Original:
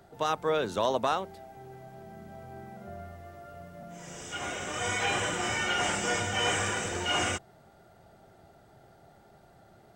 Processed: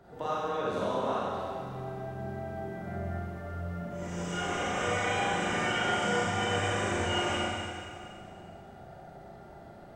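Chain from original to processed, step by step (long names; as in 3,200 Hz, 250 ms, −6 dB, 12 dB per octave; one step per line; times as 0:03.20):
high-shelf EQ 3,100 Hz −11 dB
downward compressor, threshold −36 dBFS, peak gain reduction 12.5 dB
convolution reverb RT60 2.3 s, pre-delay 31 ms, DRR −8.5 dB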